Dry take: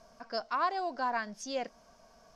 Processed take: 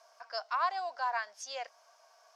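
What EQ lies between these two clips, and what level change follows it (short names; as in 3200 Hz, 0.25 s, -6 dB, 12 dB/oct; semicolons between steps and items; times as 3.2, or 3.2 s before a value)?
HPF 670 Hz 24 dB/oct; 0.0 dB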